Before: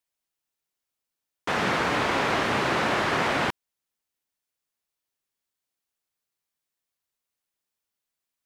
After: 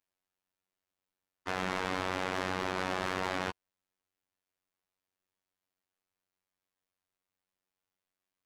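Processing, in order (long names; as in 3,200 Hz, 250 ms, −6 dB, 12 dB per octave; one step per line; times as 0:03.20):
high-shelf EQ 3,600 Hz −12 dB
brickwall limiter −17.5 dBFS, peak gain reduction 3.5 dB
soft clipping −33 dBFS, distortion −7 dB
phases set to zero 93 Hz
level +3 dB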